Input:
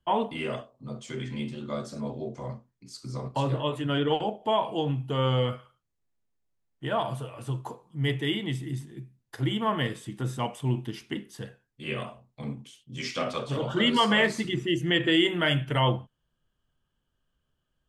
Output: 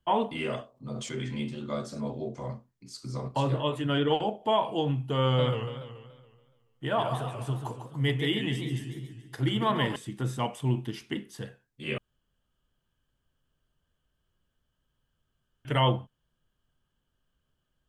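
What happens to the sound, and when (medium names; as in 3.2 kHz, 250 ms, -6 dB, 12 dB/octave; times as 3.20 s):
0.73–1.37 s: decay stretcher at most 37 dB/s
5.24–9.96 s: modulated delay 142 ms, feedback 54%, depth 195 cents, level -8 dB
11.98–15.65 s: room tone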